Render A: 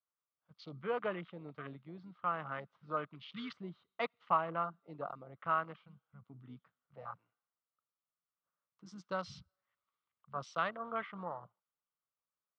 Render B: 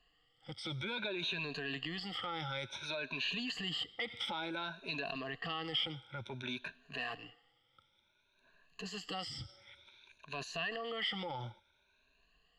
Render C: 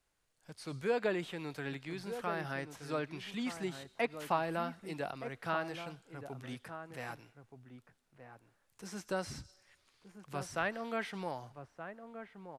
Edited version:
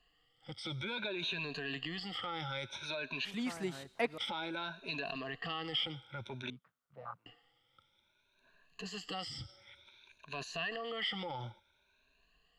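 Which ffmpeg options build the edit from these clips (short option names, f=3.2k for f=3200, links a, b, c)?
-filter_complex "[1:a]asplit=3[a][b][c];[a]atrim=end=3.252[d];[2:a]atrim=start=3.248:end=4.182[e];[b]atrim=start=4.178:end=6.502[f];[0:a]atrim=start=6.498:end=7.262[g];[c]atrim=start=7.258[h];[d][e]acrossfade=d=0.004:c1=hsin:c2=hsin[i];[i][f]acrossfade=d=0.004:c1=hsin:c2=hsin[j];[j][g]acrossfade=d=0.004:c1=hsin:c2=hsin[k];[k][h]acrossfade=d=0.004:c1=hsin:c2=hsin"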